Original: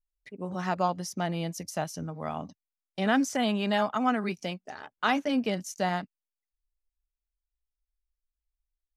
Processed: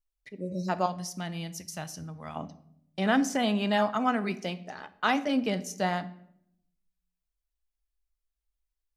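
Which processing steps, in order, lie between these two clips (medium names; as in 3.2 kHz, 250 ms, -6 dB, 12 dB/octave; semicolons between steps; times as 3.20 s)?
0.42–0.67 s: spectral replace 670–3800 Hz before; 0.86–2.36 s: peaking EQ 500 Hz -10.5 dB 2.6 oct; reverberation RT60 0.70 s, pre-delay 6 ms, DRR 12.5 dB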